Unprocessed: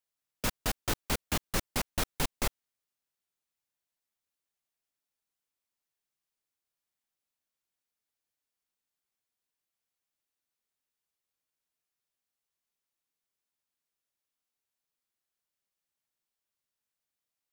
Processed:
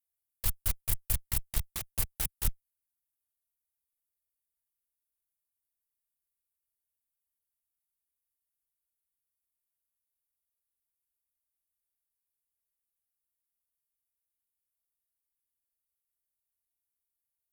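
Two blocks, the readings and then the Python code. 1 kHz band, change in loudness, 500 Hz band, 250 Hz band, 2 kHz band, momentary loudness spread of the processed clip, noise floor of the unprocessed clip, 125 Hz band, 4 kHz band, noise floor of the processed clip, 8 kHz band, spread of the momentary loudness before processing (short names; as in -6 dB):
-12.5 dB, +0.5 dB, -14.5 dB, -12.0 dB, -9.5 dB, 4 LU, under -85 dBFS, +1.0 dB, -7.0 dB, under -85 dBFS, +0.5 dB, 3 LU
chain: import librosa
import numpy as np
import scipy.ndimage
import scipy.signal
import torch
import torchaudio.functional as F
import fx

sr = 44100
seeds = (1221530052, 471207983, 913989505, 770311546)

y = scipy.signal.sosfilt(scipy.signal.cheby2(4, 60, [260.0, 3400.0], 'bandstop', fs=sr, output='sos'), x)
y = fx.cheby_harmonics(y, sr, harmonics=(7, 8), levels_db=(-42, -13), full_scale_db=-20.0)
y = fx.quant_float(y, sr, bits=6)
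y = y * librosa.db_to_amplitude(4.5)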